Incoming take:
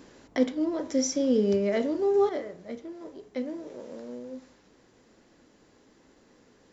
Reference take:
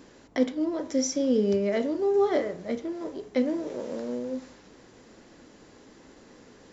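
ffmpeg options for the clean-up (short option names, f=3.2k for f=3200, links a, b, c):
-af "asetnsamples=n=441:p=0,asendcmd='2.29 volume volume 7.5dB',volume=0dB"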